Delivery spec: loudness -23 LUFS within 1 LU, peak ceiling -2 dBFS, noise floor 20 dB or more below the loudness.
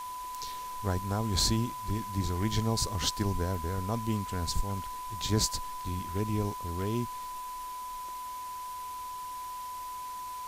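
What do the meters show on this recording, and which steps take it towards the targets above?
steady tone 1 kHz; tone level -37 dBFS; noise floor -40 dBFS; noise floor target -53 dBFS; loudness -33.0 LUFS; peak level -13.0 dBFS; loudness target -23.0 LUFS
-> band-stop 1 kHz, Q 30; noise reduction 13 dB, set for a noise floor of -40 dBFS; trim +10 dB

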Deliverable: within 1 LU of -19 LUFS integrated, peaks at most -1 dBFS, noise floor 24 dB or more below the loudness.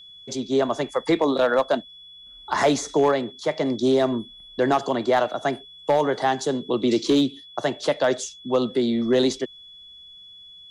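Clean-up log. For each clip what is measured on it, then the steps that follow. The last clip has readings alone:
clipped samples 0.5%; clipping level -12.0 dBFS; steady tone 3.4 kHz; tone level -43 dBFS; loudness -23.0 LUFS; peak level -12.0 dBFS; loudness target -19.0 LUFS
-> clip repair -12 dBFS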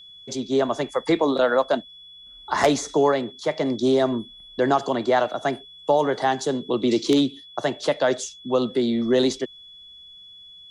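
clipped samples 0.0%; steady tone 3.4 kHz; tone level -43 dBFS
-> band-stop 3.4 kHz, Q 30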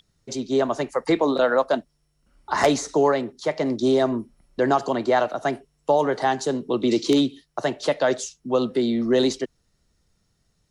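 steady tone not found; loudness -23.0 LUFS; peak level -3.0 dBFS; loudness target -19.0 LUFS
-> trim +4 dB; peak limiter -1 dBFS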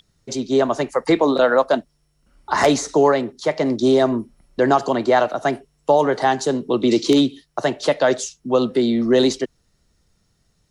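loudness -19.0 LUFS; peak level -1.0 dBFS; noise floor -66 dBFS

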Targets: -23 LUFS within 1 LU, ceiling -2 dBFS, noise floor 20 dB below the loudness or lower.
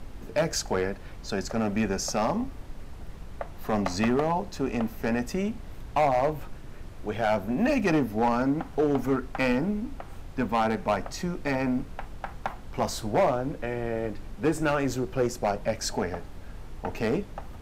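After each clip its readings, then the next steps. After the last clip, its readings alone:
clipped samples 1.0%; clipping level -17.5 dBFS; noise floor -42 dBFS; noise floor target -48 dBFS; loudness -28.0 LUFS; peak level -17.5 dBFS; loudness target -23.0 LUFS
-> clip repair -17.5 dBFS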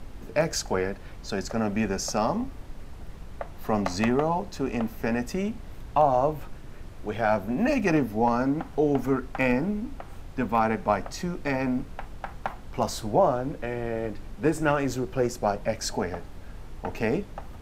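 clipped samples 0.0%; noise floor -42 dBFS; noise floor target -48 dBFS
-> noise print and reduce 6 dB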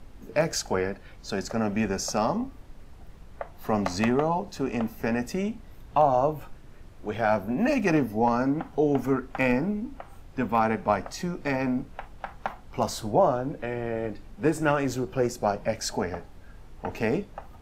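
noise floor -48 dBFS; loudness -27.5 LUFS; peak level -8.5 dBFS; loudness target -23.0 LUFS
-> trim +4.5 dB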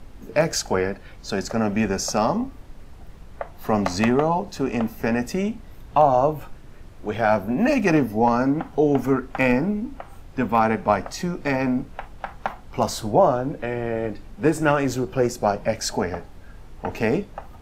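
loudness -23.0 LUFS; peak level -4.0 dBFS; noise floor -44 dBFS

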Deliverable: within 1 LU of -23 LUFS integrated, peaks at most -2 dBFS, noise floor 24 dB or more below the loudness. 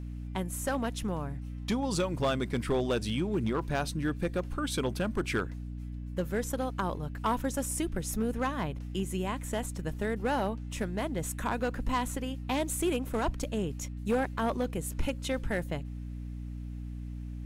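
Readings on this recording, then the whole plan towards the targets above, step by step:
clipped samples 0.9%; clipping level -22.0 dBFS; hum 60 Hz; highest harmonic 300 Hz; hum level -36 dBFS; loudness -33.0 LUFS; peak level -22.0 dBFS; loudness target -23.0 LUFS
-> clip repair -22 dBFS; hum notches 60/120/180/240/300 Hz; trim +10 dB

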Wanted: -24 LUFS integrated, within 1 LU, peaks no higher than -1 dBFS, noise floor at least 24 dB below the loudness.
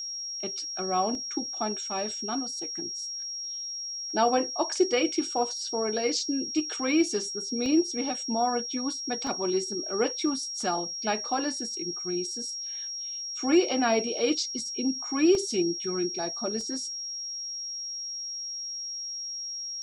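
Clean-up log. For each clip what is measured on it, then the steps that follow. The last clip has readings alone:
dropouts 5; longest dropout 1.2 ms; steady tone 5.6 kHz; tone level -33 dBFS; loudness -28.5 LUFS; peak level -11.5 dBFS; loudness target -24.0 LUFS
-> interpolate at 1.15/7.66/9.27/15.35/16.61 s, 1.2 ms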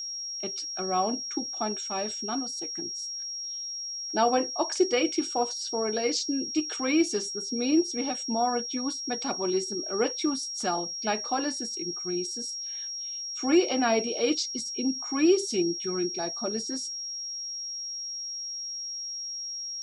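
dropouts 0; steady tone 5.6 kHz; tone level -33 dBFS
-> band-stop 5.6 kHz, Q 30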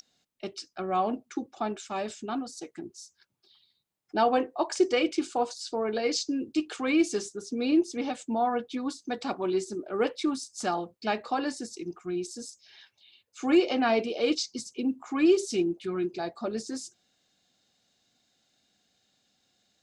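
steady tone not found; loudness -29.5 LUFS; peak level -12.0 dBFS; loudness target -24.0 LUFS
-> trim +5.5 dB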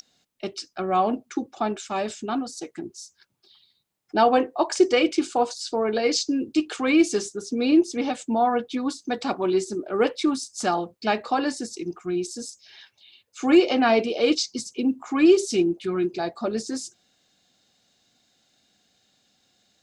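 loudness -24.0 LUFS; peak level -6.5 dBFS; noise floor -70 dBFS

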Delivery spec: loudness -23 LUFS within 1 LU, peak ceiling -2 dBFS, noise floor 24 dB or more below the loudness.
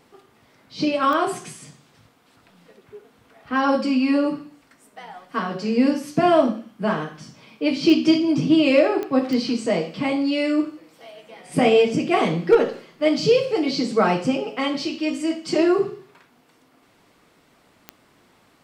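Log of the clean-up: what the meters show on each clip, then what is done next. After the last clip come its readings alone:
clicks found 5; loudness -21.0 LUFS; peak level -5.5 dBFS; loudness target -23.0 LUFS
-> de-click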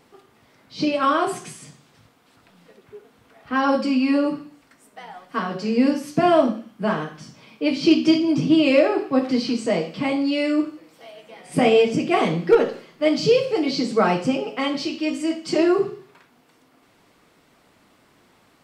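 clicks found 0; loudness -21.0 LUFS; peak level -5.5 dBFS; loudness target -23.0 LUFS
-> trim -2 dB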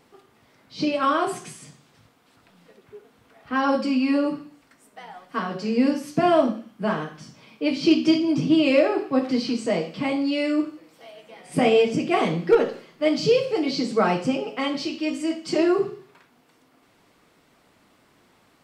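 loudness -23.0 LUFS; peak level -7.5 dBFS; noise floor -60 dBFS

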